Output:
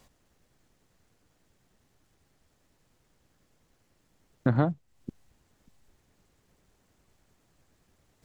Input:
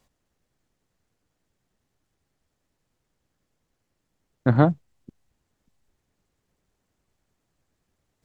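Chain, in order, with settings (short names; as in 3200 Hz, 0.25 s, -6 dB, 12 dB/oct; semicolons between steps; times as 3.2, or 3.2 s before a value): compressor 2.5:1, threshold -35 dBFS, peak gain reduction 16.5 dB; gain +7.5 dB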